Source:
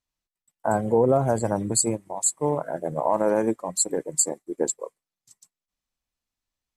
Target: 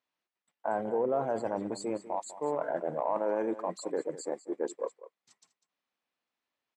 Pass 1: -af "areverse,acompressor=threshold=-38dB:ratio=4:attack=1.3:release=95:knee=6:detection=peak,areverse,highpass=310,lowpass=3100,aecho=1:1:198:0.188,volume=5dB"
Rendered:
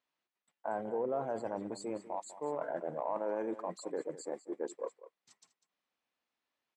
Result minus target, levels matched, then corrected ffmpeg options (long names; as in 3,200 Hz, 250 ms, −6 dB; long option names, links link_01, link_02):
downward compressor: peak gain reduction +5 dB
-af "areverse,acompressor=threshold=-31dB:ratio=4:attack=1.3:release=95:knee=6:detection=peak,areverse,highpass=310,lowpass=3100,aecho=1:1:198:0.188,volume=5dB"